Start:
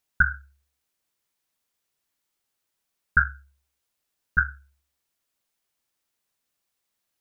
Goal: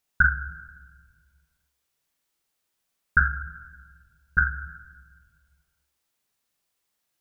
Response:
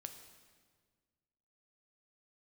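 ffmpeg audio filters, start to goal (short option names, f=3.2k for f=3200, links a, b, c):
-filter_complex "[0:a]asplit=2[a][b];[1:a]atrim=start_sample=2205,adelay=42[c];[b][c]afir=irnorm=-1:irlink=0,volume=1.5dB[d];[a][d]amix=inputs=2:normalize=0"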